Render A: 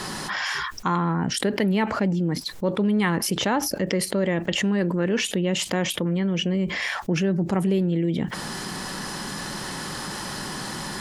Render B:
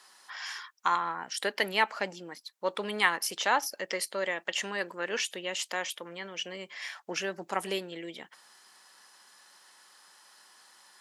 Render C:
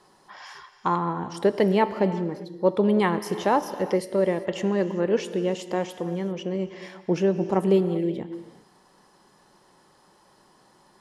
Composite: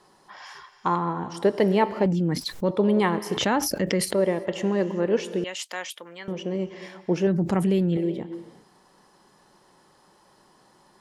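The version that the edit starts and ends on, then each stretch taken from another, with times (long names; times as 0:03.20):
C
0:02.06–0:02.71: punch in from A
0:03.37–0:04.14: punch in from A
0:05.44–0:06.28: punch in from B
0:07.27–0:07.97: punch in from A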